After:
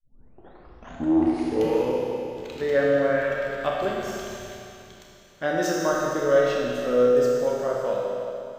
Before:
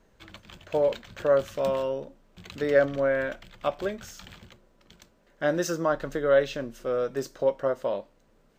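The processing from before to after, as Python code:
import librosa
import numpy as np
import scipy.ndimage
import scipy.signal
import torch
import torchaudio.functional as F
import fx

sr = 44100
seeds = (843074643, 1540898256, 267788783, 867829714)

p1 = fx.tape_start_head(x, sr, length_s=1.99)
p2 = fx.rider(p1, sr, range_db=10, speed_s=0.5)
p3 = p1 + F.gain(torch.from_numpy(p2), -2.5).numpy()
p4 = fx.comb_fb(p3, sr, f0_hz=62.0, decay_s=0.84, harmonics='all', damping=0.0, mix_pct=60)
y = fx.rev_schroeder(p4, sr, rt60_s=2.6, comb_ms=25, drr_db=-1.5)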